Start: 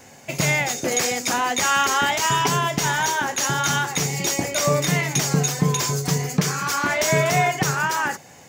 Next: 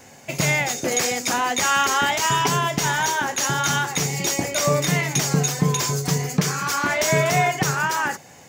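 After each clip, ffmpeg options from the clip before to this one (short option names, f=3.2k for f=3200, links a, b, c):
-af anull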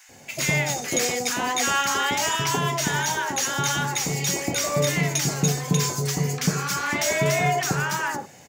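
-filter_complex "[0:a]acrossover=split=1100[a][b];[a]adelay=90[c];[c][b]amix=inputs=2:normalize=0,acontrast=57,volume=-7.5dB"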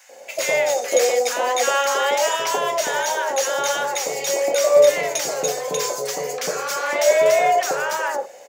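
-af "highpass=f=540:t=q:w=6.2"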